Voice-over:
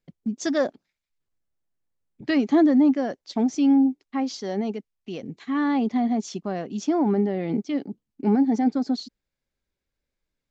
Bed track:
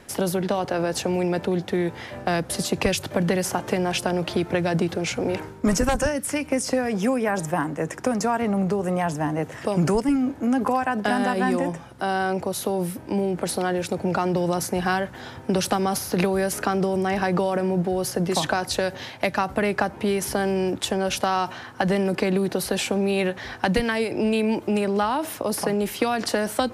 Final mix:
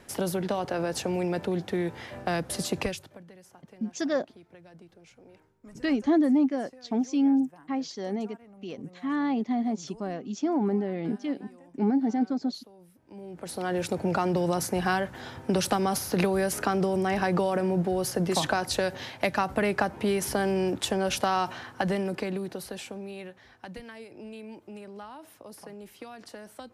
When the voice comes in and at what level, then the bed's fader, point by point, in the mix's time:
3.55 s, −4.5 dB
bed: 0:02.80 −5 dB
0:03.26 −29 dB
0:12.88 −29 dB
0:13.77 −3 dB
0:21.62 −3 dB
0:23.47 −20.5 dB

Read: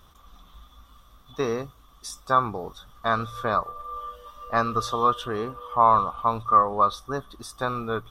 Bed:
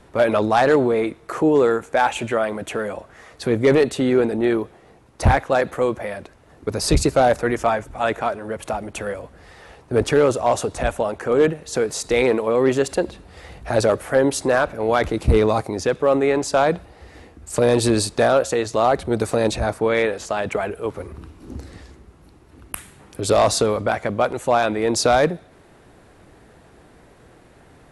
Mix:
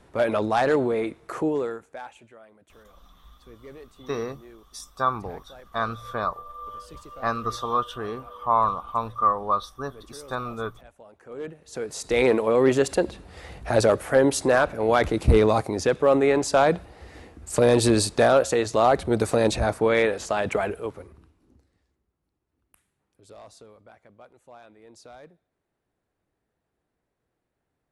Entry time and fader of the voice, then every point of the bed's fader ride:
2.70 s, −3.0 dB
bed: 0:01.38 −5.5 dB
0:02.34 −29 dB
0:10.93 −29 dB
0:12.26 −1.5 dB
0:20.71 −1.5 dB
0:21.71 −30.5 dB

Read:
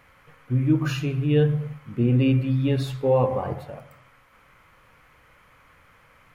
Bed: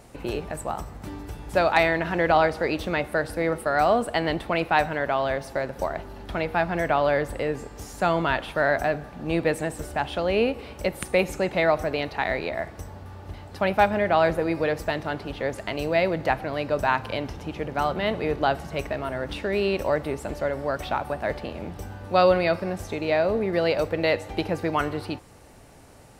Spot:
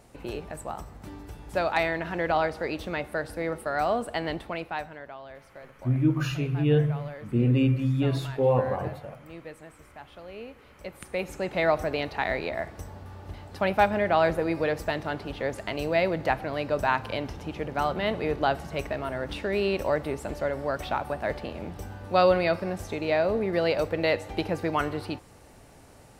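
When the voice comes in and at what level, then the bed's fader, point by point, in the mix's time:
5.35 s, −2.5 dB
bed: 0:04.35 −5.5 dB
0:05.20 −19 dB
0:10.45 −19 dB
0:11.69 −2 dB

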